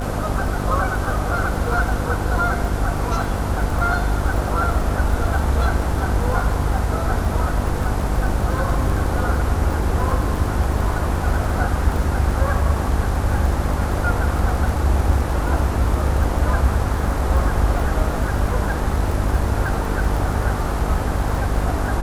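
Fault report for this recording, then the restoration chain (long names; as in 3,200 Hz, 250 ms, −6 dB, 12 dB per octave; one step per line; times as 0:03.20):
mains buzz 50 Hz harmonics 15 −24 dBFS
surface crackle 42 per second −26 dBFS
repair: click removal
hum removal 50 Hz, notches 15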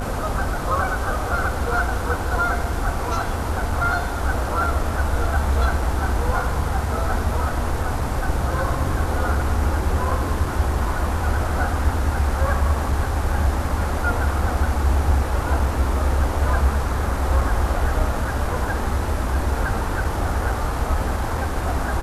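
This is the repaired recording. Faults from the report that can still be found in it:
none of them is left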